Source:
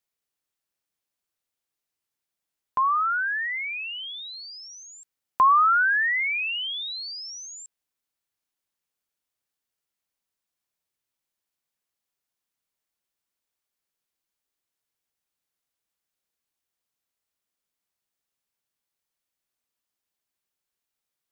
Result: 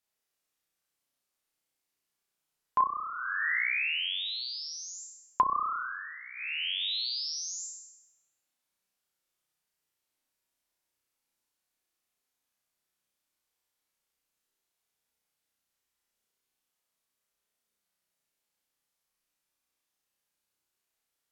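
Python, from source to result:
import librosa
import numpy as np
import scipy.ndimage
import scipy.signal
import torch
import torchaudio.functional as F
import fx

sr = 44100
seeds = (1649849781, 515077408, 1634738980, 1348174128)

y = fx.peak_eq(x, sr, hz=95.0, db=-3.5, octaves=0.92)
y = fx.room_flutter(y, sr, wall_m=5.6, rt60_s=0.95)
y = fx.env_lowpass_down(y, sr, base_hz=490.0, full_db=-16.0)
y = y * librosa.db_to_amplitude(-1.5)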